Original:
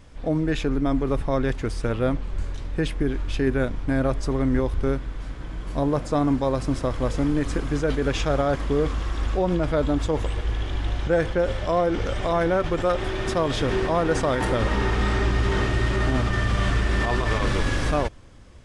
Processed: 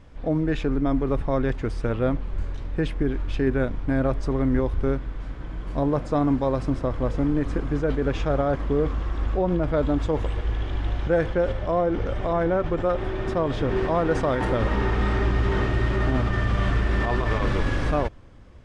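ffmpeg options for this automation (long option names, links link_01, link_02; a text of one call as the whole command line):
ffmpeg -i in.wav -af "asetnsamples=nb_out_samples=441:pad=0,asendcmd='6.7 lowpass f 1400;9.74 lowpass f 2300;11.52 lowpass f 1200;13.76 lowpass f 2100',lowpass=frequency=2300:poles=1" out.wav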